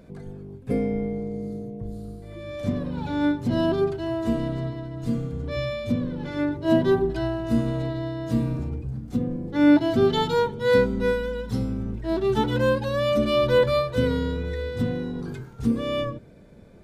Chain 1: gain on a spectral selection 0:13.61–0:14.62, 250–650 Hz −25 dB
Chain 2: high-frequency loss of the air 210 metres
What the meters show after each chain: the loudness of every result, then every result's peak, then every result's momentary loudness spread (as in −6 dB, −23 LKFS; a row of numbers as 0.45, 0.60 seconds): −25.0, −25.5 LKFS; −7.0, −7.5 dBFS; 13, 13 LU